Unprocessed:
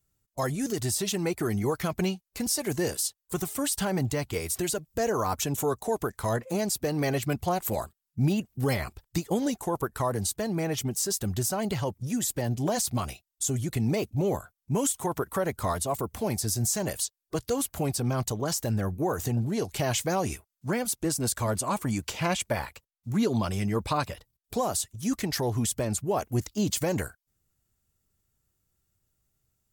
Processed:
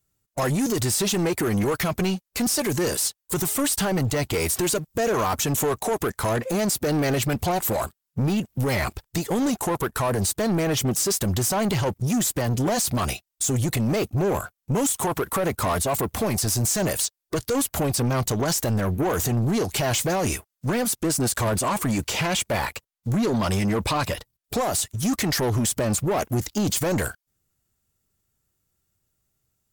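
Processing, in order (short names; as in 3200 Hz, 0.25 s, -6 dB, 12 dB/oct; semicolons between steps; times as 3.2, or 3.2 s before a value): low shelf 93 Hz -5.5 dB; limiter -24.5 dBFS, peak gain reduction 8.5 dB; sample leveller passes 2; gain +6.5 dB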